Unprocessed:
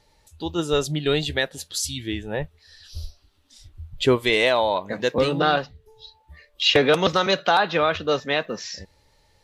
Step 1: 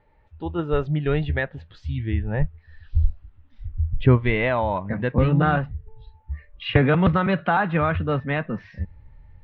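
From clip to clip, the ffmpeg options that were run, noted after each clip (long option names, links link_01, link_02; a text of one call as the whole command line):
ffmpeg -i in.wav -af "lowpass=frequency=2200:width=0.5412,lowpass=frequency=2200:width=1.3066,asubboost=boost=8.5:cutoff=150" out.wav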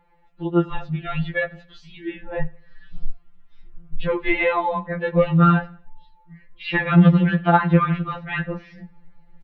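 ffmpeg -i in.wav -af "aecho=1:1:88|176|264:0.0631|0.0259|0.0106,afftfilt=real='re*2.83*eq(mod(b,8),0)':imag='im*2.83*eq(mod(b,8),0)':win_size=2048:overlap=0.75,volume=4dB" out.wav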